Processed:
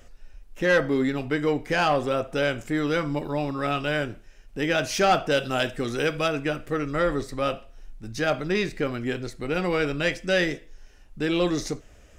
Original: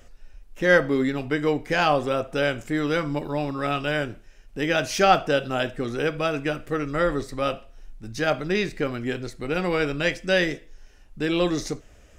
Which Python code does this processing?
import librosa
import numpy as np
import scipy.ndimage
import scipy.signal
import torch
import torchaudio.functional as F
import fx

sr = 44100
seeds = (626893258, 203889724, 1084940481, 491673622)

y = fx.high_shelf(x, sr, hz=2700.0, db=7.5, at=(5.31, 6.28))
y = 10.0 ** (-12.5 / 20.0) * np.tanh(y / 10.0 ** (-12.5 / 20.0))